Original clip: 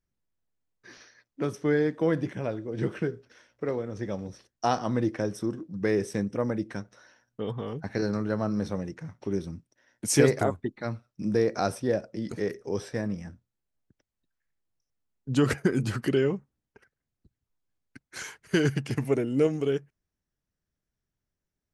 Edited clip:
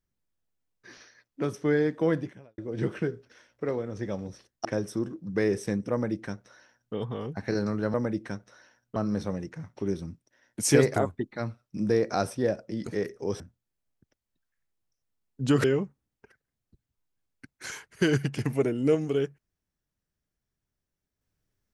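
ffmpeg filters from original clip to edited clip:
-filter_complex "[0:a]asplit=7[a][b][c][d][e][f][g];[a]atrim=end=2.58,asetpts=PTS-STARTPTS,afade=t=out:st=2.14:d=0.44:c=qua[h];[b]atrim=start=2.58:end=4.652,asetpts=PTS-STARTPTS,afade=t=in:d=0.004:c=hsin[i];[c]atrim=start=5.118:end=8.412[j];[d]atrim=start=6.388:end=7.412[k];[e]atrim=start=8.408:end=12.852[l];[f]atrim=start=13.278:end=15.522[m];[g]atrim=start=16.158[n];[h][i]concat=n=2:v=0:a=1[o];[o][j]acrossfade=d=0.004:c1=hsin:c2=hsin[p];[p][k]acrossfade=d=0.004:c1=hsin:c2=hsin[q];[q][l]acrossfade=d=0.004:c1=hsin:c2=hsin[r];[r][m]acrossfade=d=0.004:c1=hsin:c2=hsin[s];[s][n]acrossfade=d=0.004:c1=hsin:c2=hsin"

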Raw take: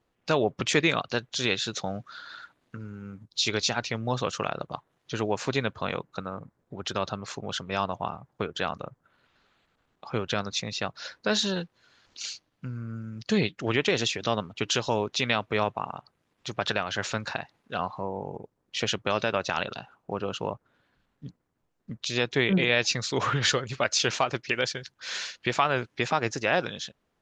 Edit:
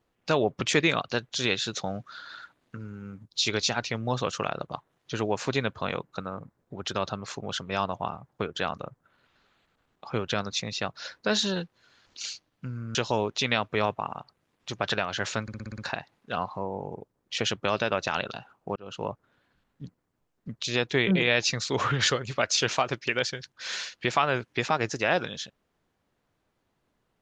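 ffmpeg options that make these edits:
-filter_complex "[0:a]asplit=9[a][b][c][d][e][f][g][h][i];[a]atrim=end=12.952[j];[b]atrim=start=14.728:end=17.262[k];[c]atrim=start=17.198:end=17.262[l];[d]atrim=start=17.198:end=17.262[m];[e]atrim=start=17.198:end=17.262[n];[f]atrim=start=17.198:end=17.262[o];[g]atrim=start=17.198:end=17.262[p];[h]atrim=start=17.198:end=20.18,asetpts=PTS-STARTPTS,afade=t=out:st=2.978:d=0.004:c=hsin[q];[i]atrim=start=20.18,asetpts=PTS-STARTPTS,afade=t=in:d=0.33[r];[j][k]acrossfade=d=0.004:c1=hsin:c2=hsin[s];[s][l]acrossfade=d=0.004:c1=hsin:c2=hsin[t];[t][m]acrossfade=d=0.004:c1=hsin:c2=hsin[u];[u][n]acrossfade=d=0.004:c1=hsin:c2=hsin[v];[v][o]acrossfade=d=0.004:c1=hsin:c2=hsin[w];[w][p]acrossfade=d=0.004:c1=hsin:c2=hsin[x];[q][r]concat=n=2:v=0:a=1[y];[x][y]acrossfade=d=0.004:c1=hsin:c2=hsin"

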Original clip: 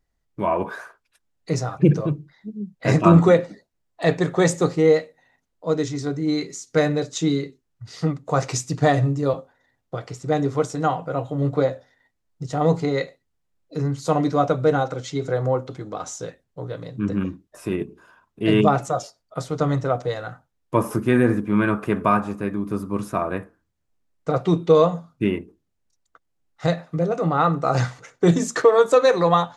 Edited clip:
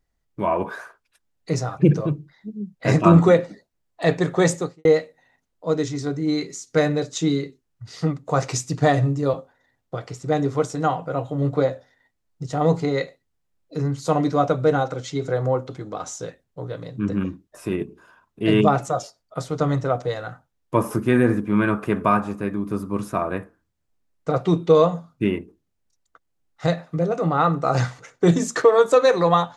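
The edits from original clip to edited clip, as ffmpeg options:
-filter_complex "[0:a]asplit=2[a][b];[a]atrim=end=4.85,asetpts=PTS-STARTPTS,afade=t=out:st=4.54:d=0.31:c=qua[c];[b]atrim=start=4.85,asetpts=PTS-STARTPTS,afade=t=in:d=0.004:c=hsin[d];[c][d]concat=n=2:v=0:a=1"

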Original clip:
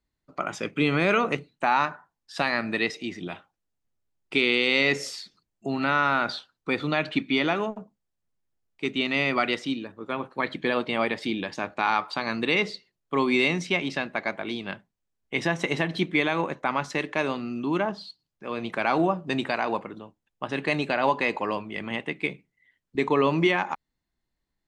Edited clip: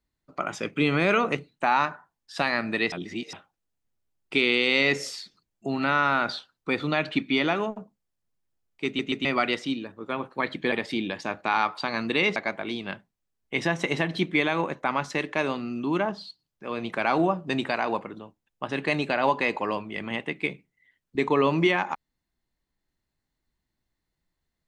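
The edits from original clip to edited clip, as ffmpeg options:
-filter_complex "[0:a]asplit=8[a][b][c][d][e][f][g][h];[a]atrim=end=2.922[i];[b]atrim=start=2.918:end=3.332,asetpts=PTS-STARTPTS,areverse[j];[c]atrim=start=3.328:end=8.992[k];[d]atrim=start=8.858:end=8.992[l];[e]atrim=start=8.858:end=8.992[m];[f]atrim=start=9.248:end=10.722[n];[g]atrim=start=11.048:end=12.692[o];[h]atrim=start=14.158[p];[i][j]acrossfade=d=0.004:c1=hsin:c2=hsin[q];[q][k]acrossfade=d=0.004:c1=hsin:c2=hsin[r];[r][l]acrossfade=d=0.004:c1=hsin:c2=hsin[s];[s][m]acrossfade=d=0.004:c1=hsin:c2=hsin[t];[t][n]acrossfade=d=0.004:c1=hsin:c2=hsin[u];[u][o]acrossfade=d=0.004:c1=hsin:c2=hsin[v];[v][p]acrossfade=d=0.004:c1=hsin:c2=hsin"

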